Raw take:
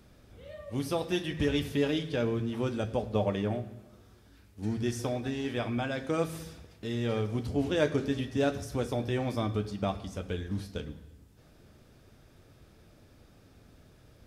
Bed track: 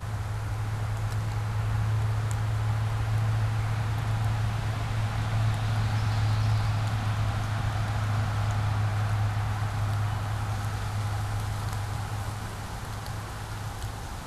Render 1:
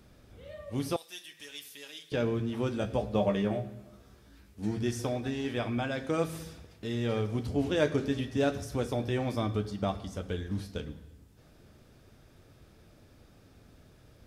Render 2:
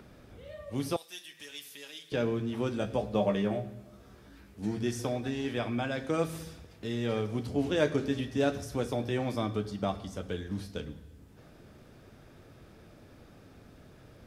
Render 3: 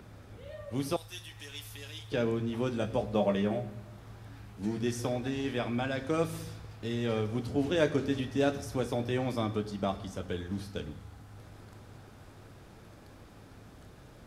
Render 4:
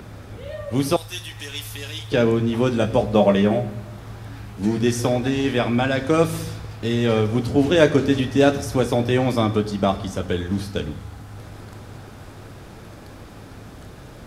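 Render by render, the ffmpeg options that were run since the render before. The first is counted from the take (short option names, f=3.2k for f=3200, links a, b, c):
-filter_complex "[0:a]asettb=1/sr,asplit=3[a][b][c];[a]atrim=end=0.964[d];[b]atrim=start=0.96:end=2.12,asetpts=PTS-STARTPTS,afade=t=in:d=0.004:c=qsin,afade=t=out:st=1.156:d=0.004:c=qsin,aderivative[e];[c]atrim=start=2.116[f];[d][e]acrossfade=d=0.004:c1=hsin:c2=qsin[g];[g][f]acrossfade=d=0.004:c1=qsin:c2=hsin,asettb=1/sr,asplit=3[h][i][j];[h]atrim=end=2.804[k];[i]atrim=start=2.8:end=4.79,asetpts=PTS-STARTPTS,afade=t=in:d=0.004:c=qsin,afade=t=out:st=1.986:d=0.004:c=qsin,asplit=2[l][m];[m]adelay=15,volume=-5dB[n];[l][n]amix=inputs=2:normalize=0,atrim=end_sample=87759[o];[j]atrim=start=4.786[p];[k][o]acrossfade=d=0.004:c1=hsin:c2=qsin[q];[q][p]acrossfade=d=0.004:c1=qsin:c2=hsin,asettb=1/sr,asplit=3[r][s][t];[r]atrim=end=9.604[u];[s]atrim=start=9.6:end=10.47,asetpts=PTS-STARTPTS,afade=t=in:d=0.004:c=qsin,afade=t=out:st=0.866:d=0.004:c=qsin,bandreject=f=2.5k:w=12[v];[t]atrim=start=10.466[w];[u][v]acrossfade=d=0.004:c1=hsin:c2=qsin[x];[x][w]acrossfade=d=0.004:c1=qsin:c2=hsin"
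-filter_complex "[0:a]acrossover=split=120|2800[a][b][c];[a]alimiter=level_in=18.5dB:limit=-24dB:level=0:latency=1,volume=-18.5dB[d];[b]acompressor=mode=upward:threshold=-48dB:ratio=2.5[e];[d][e][c]amix=inputs=3:normalize=0"
-filter_complex "[1:a]volume=-22dB[a];[0:a][a]amix=inputs=2:normalize=0"
-af "volume=12dB"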